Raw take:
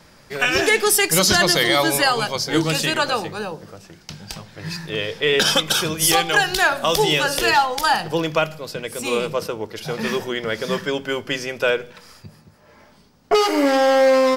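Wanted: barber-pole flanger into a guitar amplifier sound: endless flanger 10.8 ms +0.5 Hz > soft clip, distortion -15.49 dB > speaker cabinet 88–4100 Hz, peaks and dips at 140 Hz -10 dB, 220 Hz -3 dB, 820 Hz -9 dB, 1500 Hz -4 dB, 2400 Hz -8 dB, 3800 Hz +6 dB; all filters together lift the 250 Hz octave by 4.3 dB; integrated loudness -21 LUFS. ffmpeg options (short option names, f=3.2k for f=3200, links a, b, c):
-filter_complex "[0:a]equalizer=f=250:t=o:g=7.5,asplit=2[a][b];[b]adelay=10.8,afreqshift=0.5[c];[a][c]amix=inputs=2:normalize=1,asoftclip=threshold=-12.5dB,highpass=88,equalizer=f=140:t=q:w=4:g=-10,equalizer=f=220:t=q:w=4:g=-3,equalizer=f=820:t=q:w=4:g=-9,equalizer=f=1.5k:t=q:w=4:g=-4,equalizer=f=2.4k:t=q:w=4:g=-8,equalizer=f=3.8k:t=q:w=4:g=6,lowpass=f=4.1k:w=0.5412,lowpass=f=4.1k:w=1.3066,volume=3dB"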